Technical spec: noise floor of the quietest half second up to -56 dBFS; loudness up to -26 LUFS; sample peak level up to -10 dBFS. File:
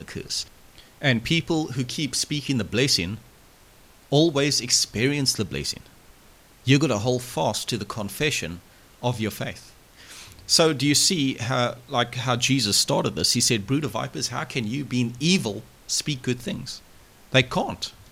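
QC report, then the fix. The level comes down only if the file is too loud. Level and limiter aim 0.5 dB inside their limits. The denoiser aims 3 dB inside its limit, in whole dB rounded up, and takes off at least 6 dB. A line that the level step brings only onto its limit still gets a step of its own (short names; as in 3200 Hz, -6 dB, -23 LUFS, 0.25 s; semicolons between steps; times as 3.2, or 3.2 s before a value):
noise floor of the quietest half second -52 dBFS: fail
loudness -23.0 LUFS: fail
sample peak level -4.0 dBFS: fail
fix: denoiser 6 dB, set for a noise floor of -52 dBFS; gain -3.5 dB; limiter -10.5 dBFS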